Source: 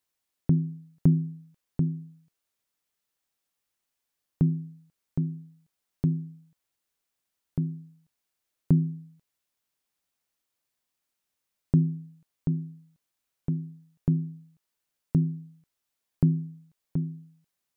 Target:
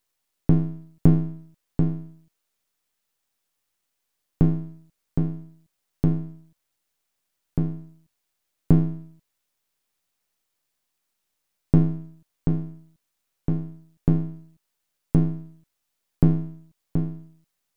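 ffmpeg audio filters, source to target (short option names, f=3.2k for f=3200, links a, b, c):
-af "aeval=exprs='if(lt(val(0),0),0.251*val(0),val(0))':c=same,volume=7.5dB"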